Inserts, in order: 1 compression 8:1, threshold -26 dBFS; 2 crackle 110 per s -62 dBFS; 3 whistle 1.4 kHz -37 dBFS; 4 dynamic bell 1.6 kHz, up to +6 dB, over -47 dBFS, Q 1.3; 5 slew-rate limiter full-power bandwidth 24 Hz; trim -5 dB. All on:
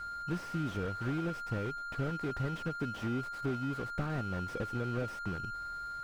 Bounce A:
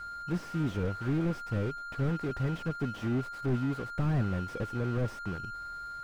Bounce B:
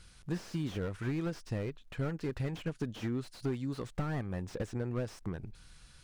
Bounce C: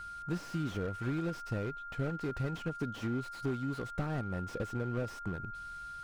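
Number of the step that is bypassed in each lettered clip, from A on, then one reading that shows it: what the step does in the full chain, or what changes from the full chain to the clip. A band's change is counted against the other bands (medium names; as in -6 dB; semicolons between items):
1, mean gain reduction 3.5 dB; 3, 1 kHz band -11.5 dB; 4, 1 kHz band -3.0 dB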